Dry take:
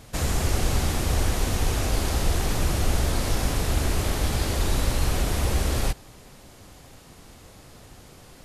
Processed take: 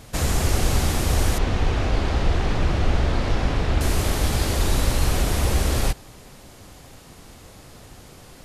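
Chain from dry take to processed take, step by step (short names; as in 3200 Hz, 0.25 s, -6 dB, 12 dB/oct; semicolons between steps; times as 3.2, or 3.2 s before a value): 1.38–3.81 LPF 3400 Hz 12 dB/oct; gain +3 dB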